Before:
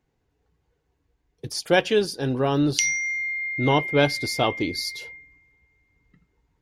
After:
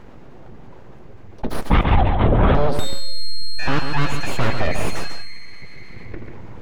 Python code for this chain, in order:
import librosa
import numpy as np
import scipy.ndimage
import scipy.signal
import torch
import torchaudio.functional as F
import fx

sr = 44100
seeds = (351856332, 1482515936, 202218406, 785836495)

y = fx.highpass(x, sr, hz=370.0, slope=24, at=(3.08, 4.34))
y = np.abs(y)
y = fx.lpc_vocoder(y, sr, seeds[0], excitation='whisper', order=16, at=(1.71, 2.55))
y = fx.rider(y, sr, range_db=10, speed_s=0.5)
y = fx.lowpass(y, sr, hz=1100.0, slope=6)
y = 10.0 ** (-16.0 / 20.0) * np.tanh(y / 10.0 ** (-16.0 / 20.0))
y = y + 10.0 ** (-9.5 / 20.0) * np.pad(y, (int(140 * sr / 1000.0), 0))[:len(y)]
y = fx.env_flatten(y, sr, amount_pct=50)
y = y * 10.0 ** (9.0 / 20.0)